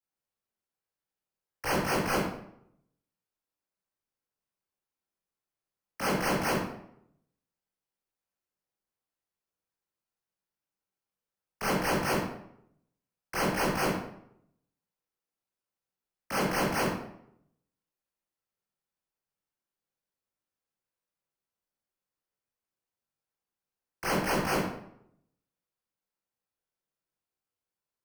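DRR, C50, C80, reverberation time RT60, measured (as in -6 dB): -7.0 dB, 2.0 dB, 6.0 dB, 0.70 s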